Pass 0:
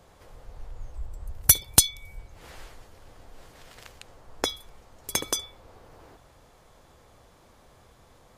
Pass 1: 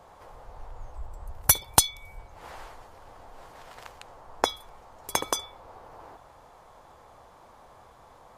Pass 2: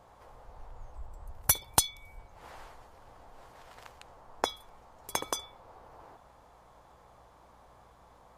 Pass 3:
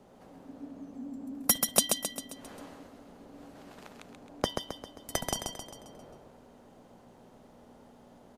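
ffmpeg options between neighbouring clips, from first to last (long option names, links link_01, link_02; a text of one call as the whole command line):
ffmpeg -i in.wav -af "equalizer=frequency=900:width_type=o:width=1.5:gain=12.5,volume=-3dB" out.wav
ffmpeg -i in.wav -af "aeval=exprs='val(0)+0.001*(sin(2*PI*60*n/s)+sin(2*PI*2*60*n/s)/2+sin(2*PI*3*60*n/s)/3+sin(2*PI*4*60*n/s)/4+sin(2*PI*5*60*n/s)/5)':channel_layout=same,volume=-5.5dB" out.wav
ffmpeg -i in.wav -af "afreqshift=-300,aecho=1:1:133|266|399|532|665|798:0.562|0.281|0.141|0.0703|0.0351|0.0176" out.wav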